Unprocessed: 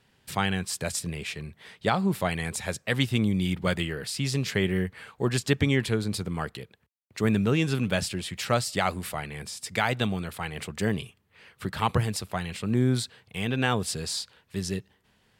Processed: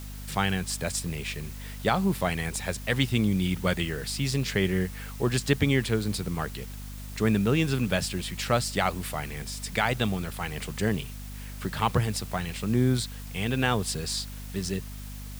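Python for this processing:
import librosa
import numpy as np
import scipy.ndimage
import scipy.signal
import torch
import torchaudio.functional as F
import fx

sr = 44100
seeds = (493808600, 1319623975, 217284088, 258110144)

y = fx.quant_dither(x, sr, seeds[0], bits=8, dither='triangular')
y = fx.add_hum(y, sr, base_hz=50, snr_db=11)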